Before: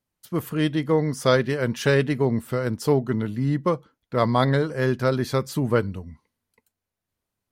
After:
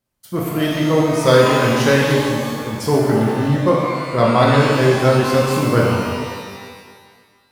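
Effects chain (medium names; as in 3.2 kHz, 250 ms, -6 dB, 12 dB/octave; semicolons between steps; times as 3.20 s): 2.04–2.73 s: slow attack 475 ms; pitch-shifted reverb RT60 1.7 s, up +12 st, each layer -8 dB, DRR -3.5 dB; trim +2.5 dB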